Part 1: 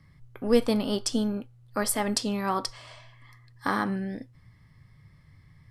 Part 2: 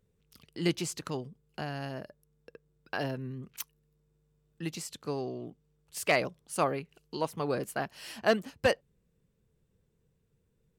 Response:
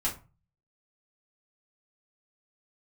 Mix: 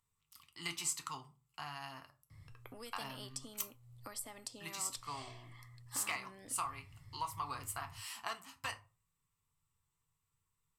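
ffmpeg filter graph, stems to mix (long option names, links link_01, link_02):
-filter_complex "[0:a]acompressor=threshold=-39dB:ratio=2,equalizer=frequency=390:width_type=o:width=0.77:gain=-4,acrossover=split=300|1200[link_01][link_02][link_03];[link_01]acompressor=threshold=-52dB:ratio=4[link_04];[link_02]acompressor=threshold=-53dB:ratio=4[link_05];[link_03]acompressor=threshold=-45dB:ratio=4[link_06];[link_04][link_05][link_06]amix=inputs=3:normalize=0,adelay=2300,volume=-2.5dB[link_07];[1:a]lowshelf=frequency=750:width_type=q:width=3:gain=-12.5,acompressor=threshold=-31dB:ratio=6,volume=-7dB,asplit=2[link_08][link_09];[link_09]volume=-8dB[link_10];[2:a]atrim=start_sample=2205[link_11];[link_10][link_11]afir=irnorm=-1:irlink=0[link_12];[link_07][link_08][link_12]amix=inputs=3:normalize=0,equalizer=frequency=100:width_type=o:width=0.33:gain=9,equalizer=frequency=200:width_type=o:width=0.33:gain=-11,equalizer=frequency=1600:width_type=o:width=0.33:gain=-9,equalizer=frequency=8000:width_type=o:width=0.33:gain=9,equalizer=frequency=12500:width_type=o:width=0.33:gain=7"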